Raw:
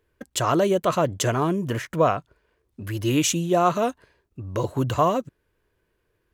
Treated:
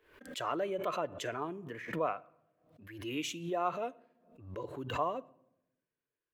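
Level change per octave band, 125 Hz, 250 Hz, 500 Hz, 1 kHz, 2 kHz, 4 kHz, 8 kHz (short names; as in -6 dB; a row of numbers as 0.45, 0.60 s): -20.5, -16.5, -13.5, -12.5, -10.0, -12.5, -20.0 dB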